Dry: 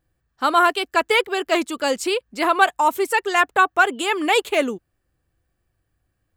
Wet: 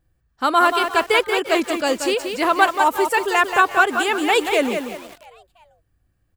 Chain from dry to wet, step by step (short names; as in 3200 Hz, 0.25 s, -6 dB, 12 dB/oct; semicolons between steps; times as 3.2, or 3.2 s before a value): low shelf 150 Hz +7.5 dB; on a send: frequency-shifting echo 0.343 s, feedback 44%, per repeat +100 Hz, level -20 dB; on the sum: lo-fi delay 0.182 s, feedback 35%, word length 6-bit, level -6 dB